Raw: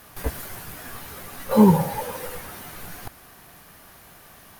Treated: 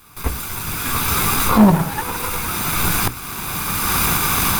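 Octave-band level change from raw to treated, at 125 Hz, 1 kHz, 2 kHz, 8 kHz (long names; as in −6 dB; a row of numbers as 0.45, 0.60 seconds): +5.5, +9.5, +16.5, +18.0 decibels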